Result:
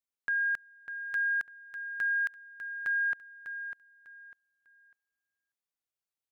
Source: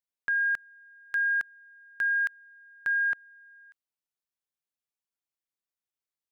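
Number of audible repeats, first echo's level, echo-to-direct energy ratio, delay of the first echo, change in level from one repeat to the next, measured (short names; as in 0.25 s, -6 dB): 3, -9.5 dB, -9.0 dB, 0.599 s, -11.5 dB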